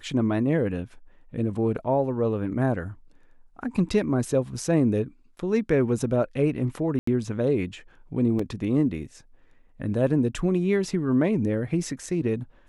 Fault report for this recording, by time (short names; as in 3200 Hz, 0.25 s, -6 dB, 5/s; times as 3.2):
6.99–7.07 gap 84 ms
8.39 gap 4.1 ms